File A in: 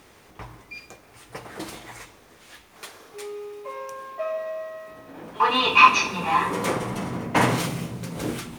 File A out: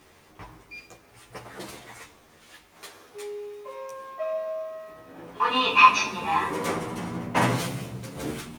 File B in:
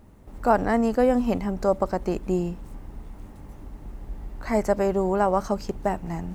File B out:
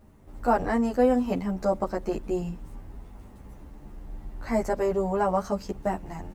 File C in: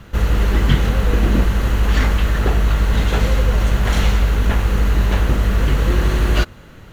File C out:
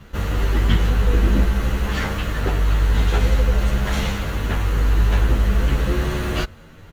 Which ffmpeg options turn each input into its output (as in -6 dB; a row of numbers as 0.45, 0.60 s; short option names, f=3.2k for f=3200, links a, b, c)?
-filter_complex "[0:a]asplit=2[a][b];[b]adelay=10.9,afreqshift=0.48[c];[a][c]amix=inputs=2:normalize=1"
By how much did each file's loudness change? -2.5, -2.5, -3.0 LU